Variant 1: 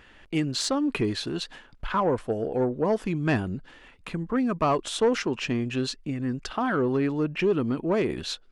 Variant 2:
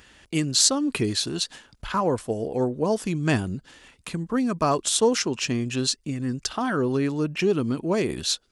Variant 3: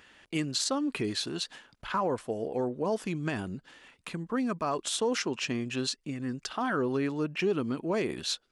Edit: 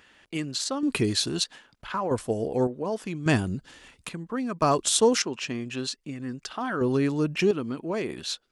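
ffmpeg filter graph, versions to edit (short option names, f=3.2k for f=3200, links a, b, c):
-filter_complex "[1:a]asplit=5[a][b][c][d][e];[2:a]asplit=6[f][g][h][i][j][k];[f]atrim=end=0.832[l];[a]atrim=start=0.828:end=1.442[m];[g]atrim=start=1.438:end=2.112[n];[b]atrim=start=2.108:end=2.672[o];[h]atrim=start=2.668:end=3.262[p];[c]atrim=start=3.258:end=4.092[q];[i]atrim=start=4.088:end=4.622[r];[d]atrim=start=4.618:end=5.222[s];[j]atrim=start=5.218:end=6.812[t];[e]atrim=start=6.808:end=7.512[u];[k]atrim=start=7.508[v];[l][m]acrossfade=d=0.004:c1=hsin:c2=hsin[w];[w][n]acrossfade=d=0.004:c1=hsin:c2=hsin[x];[x][o]acrossfade=d=0.004:c1=hsin:c2=hsin[y];[y][p]acrossfade=d=0.004:c1=hsin:c2=hsin[z];[z][q]acrossfade=d=0.004:c1=hsin:c2=hsin[aa];[aa][r]acrossfade=d=0.004:c1=hsin:c2=hsin[ab];[ab][s]acrossfade=d=0.004:c1=hsin:c2=hsin[ac];[ac][t]acrossfade=d=0.004:c1=hsin:c2=hsin[ad];[ad][u]acrossfade=d=0.004:c1=hsin:c2=hsin[ae];[ae][v]acrossfade=d=0.004:c1=hsin:c2=hsin"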